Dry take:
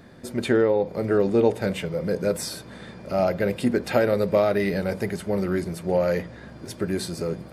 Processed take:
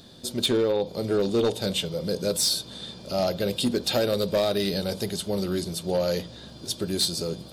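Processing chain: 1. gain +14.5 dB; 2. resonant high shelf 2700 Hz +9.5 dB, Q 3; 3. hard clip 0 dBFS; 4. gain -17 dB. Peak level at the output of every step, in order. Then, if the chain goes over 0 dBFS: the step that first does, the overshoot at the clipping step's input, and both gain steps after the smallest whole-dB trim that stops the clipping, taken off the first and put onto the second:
+7.5, +8.0, 0.0, -17.0 dBFS; step 1, 8.0 dB; step 1 +6.5 dB, step 4 -9 dB

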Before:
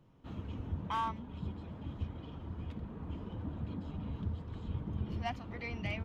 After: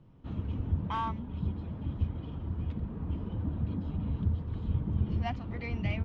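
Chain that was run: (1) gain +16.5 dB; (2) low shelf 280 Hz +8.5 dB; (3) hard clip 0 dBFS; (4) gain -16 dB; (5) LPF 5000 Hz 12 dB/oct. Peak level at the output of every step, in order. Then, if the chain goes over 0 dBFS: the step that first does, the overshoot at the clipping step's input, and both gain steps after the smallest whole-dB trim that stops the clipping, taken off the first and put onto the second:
-11.5, -3.0, -3.0, -19.0, -19.0 dBFS; no overload

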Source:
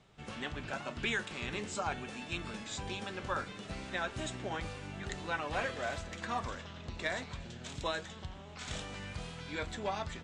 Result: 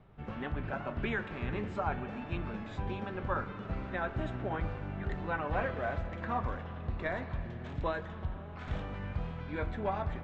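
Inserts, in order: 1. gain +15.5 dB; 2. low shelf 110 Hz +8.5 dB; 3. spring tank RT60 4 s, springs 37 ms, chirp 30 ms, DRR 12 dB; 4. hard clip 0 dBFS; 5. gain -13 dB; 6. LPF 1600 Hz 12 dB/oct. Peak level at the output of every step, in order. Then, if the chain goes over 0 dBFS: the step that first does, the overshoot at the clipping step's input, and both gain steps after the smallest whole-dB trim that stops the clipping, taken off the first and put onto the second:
-5.5, -5.0, -5.0, -5.0, -18.0, -20.0 dBFS; no overload

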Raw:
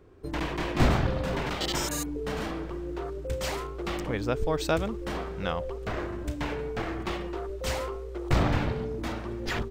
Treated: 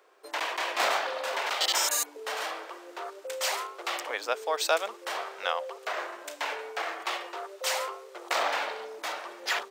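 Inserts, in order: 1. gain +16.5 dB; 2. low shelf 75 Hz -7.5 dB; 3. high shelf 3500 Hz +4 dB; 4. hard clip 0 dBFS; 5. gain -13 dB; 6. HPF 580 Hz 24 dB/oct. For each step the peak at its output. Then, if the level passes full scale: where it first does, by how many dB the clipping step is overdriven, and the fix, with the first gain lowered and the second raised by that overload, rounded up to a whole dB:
+7.5, +4.5, +5.0, 0.0, -13.0, -12.0 dBFS; step 1, 5.0 dB; step 1 +11.5 dB, step 5 -8 dB

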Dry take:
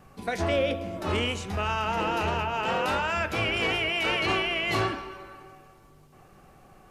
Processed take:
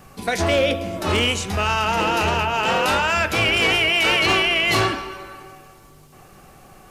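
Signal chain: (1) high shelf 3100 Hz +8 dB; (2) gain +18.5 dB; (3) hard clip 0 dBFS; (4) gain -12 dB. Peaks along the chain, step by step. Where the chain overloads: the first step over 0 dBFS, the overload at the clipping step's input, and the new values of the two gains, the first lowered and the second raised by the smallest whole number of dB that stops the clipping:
-13.0, +5.5, 0.0, -12.0 dBFS; step 2, 5.5 dB; step 2 +12.5 dB, step 4 -6 dB

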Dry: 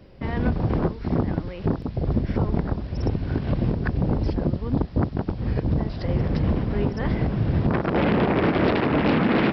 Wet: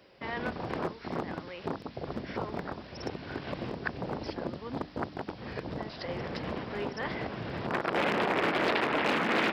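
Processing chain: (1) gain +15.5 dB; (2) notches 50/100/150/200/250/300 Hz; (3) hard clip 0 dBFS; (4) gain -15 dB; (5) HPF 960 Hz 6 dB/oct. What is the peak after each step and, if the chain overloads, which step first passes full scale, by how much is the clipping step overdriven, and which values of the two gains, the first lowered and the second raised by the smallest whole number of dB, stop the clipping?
+6.0, +5.5, 0.0, -15.0, -14.0 dBFS; step 1, 5.5 dB; step 1 +9.5 dB, step 4 -9 dB

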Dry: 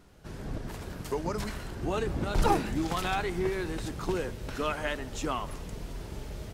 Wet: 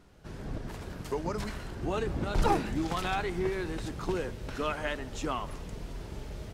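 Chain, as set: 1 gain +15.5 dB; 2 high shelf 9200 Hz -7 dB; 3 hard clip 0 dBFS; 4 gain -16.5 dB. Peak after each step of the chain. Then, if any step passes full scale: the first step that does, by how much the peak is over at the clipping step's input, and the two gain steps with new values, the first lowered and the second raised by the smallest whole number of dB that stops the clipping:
+4.0, +4.0, 0.0, -16.5 dBFS; step 1, 4.0 dB; step 1 +11.5 dB, step 4 -12.5 dB

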